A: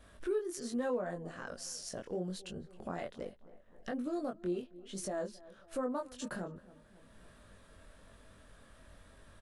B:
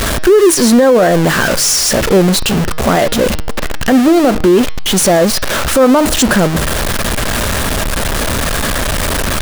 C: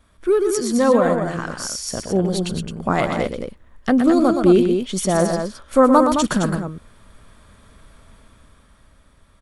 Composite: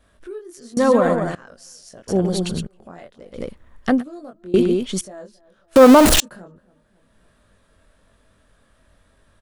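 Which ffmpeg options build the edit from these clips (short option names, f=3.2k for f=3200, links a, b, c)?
-filter_complex "[2:a]asplit=4[a][b][c][d];[0:a]asplit=6[e][f][g][h][i][j];[e]atrim=end=0.772[k];[a]atrim=start=0.768:end=1.352[l];[f]atrim=start=1.348:end=2.082[m];[b]atrim=start=2.078:end=2.672[n];[g]atrim=start=2.668:end=3.41[o];[c]atrim=start=3.31:end=4.04[p];[h]atrim=start=3.94:end=4.542[q];[d]atrim=start=4.538:end=5.012[r];[i]atrim=start=5.008:end=5.762[s];[1:a]atrim=start=5.758:end=6.202[t];[j]atrim=start=6.198[u];[k][l]acrossfade=d=0.004:c1=hsin:c2=hsin[v];[v][m]acrossfade=d=0.004:c1=hsin:c2=hsin[w];[w][n]acrossfade=d=0.004:c1=hsin:c2=hsin[x];[x][o]acrossfade=d=0.004:c1=hsin:c2=hsin[y];[y][p]acrossfade=d=0.1:c1=tri:c2=tri[z];[z][q]acrossfade=d=0.1:c1=tri:c2=tri[aa];[aa][r]acrossfade=d=0.004:c1=hsin:c2=hsin[ab];[ab][s]acrossfade=d=0.004:c1=hsin:c2=hsin[ac];[ac][t]acrossfade=d=0.004:c1=hsin:c2=hsin[ad];[ad][u]acrossfade=d=0.004:c1=hsin:c2=hsin"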